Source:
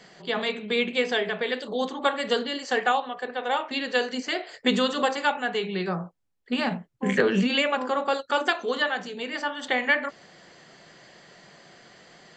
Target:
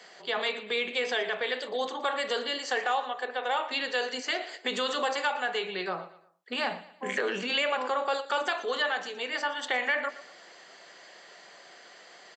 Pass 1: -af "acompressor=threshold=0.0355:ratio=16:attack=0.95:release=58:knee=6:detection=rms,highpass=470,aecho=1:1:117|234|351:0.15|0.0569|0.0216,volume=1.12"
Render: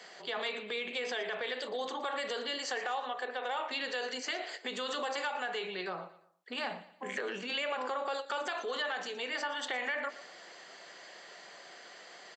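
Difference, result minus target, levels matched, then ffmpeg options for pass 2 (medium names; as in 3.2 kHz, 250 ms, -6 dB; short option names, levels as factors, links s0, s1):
compression: peak gain reduction +8 dB
-af "acompressor=threshold=0.0944:ratio=16:attack=0.95:release=58:knee=6:detection=rms,highpass=470,aecho=1:1:117|234|351:0.15|0.0569|0.0216,volume=1.12"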